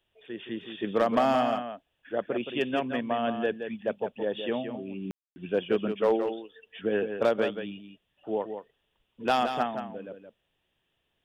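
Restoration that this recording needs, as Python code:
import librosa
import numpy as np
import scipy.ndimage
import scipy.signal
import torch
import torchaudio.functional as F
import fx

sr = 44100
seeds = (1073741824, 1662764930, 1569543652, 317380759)

y = fx.fix_ambience(x, sr, seeds[0], print_start_s=10.66, print_end_s=11.16, start_s=5.11, end_s=5.36)
y = fx.fix_echo_inverse(y, sr, delay_ms=171, level_db=-8.0)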